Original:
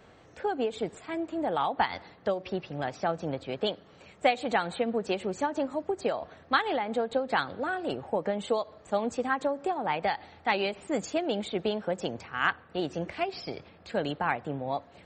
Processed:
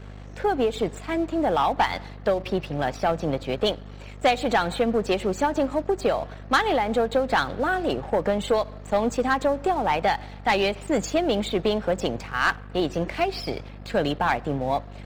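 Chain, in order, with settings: hum 50 Hz, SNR 15 dB; waveshaping leveller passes 2

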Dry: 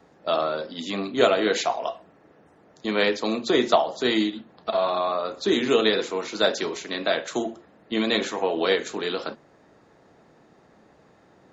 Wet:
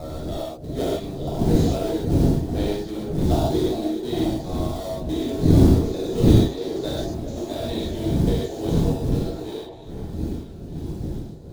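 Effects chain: slices played last to first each 212 ms, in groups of 3; wind noise 200 Hz -20 dBFS; dynamic bell 320 Hz, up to +6 dB, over -36 dBFS, Q 2.8; in parallel at -5.5 dB: decimation with a swept rate 28×, swing 60% 3.8 Hz; on the sum: high-order bell 1.7 kHz -9.5 dB; on a send: repeats whose band climbs or falls 408 ms, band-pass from 510 Hz, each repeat 0.7 oct, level -7 dB; on the sum: gated-style reverb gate 170 ms flat, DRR -7 dB; trim -15.5 dB

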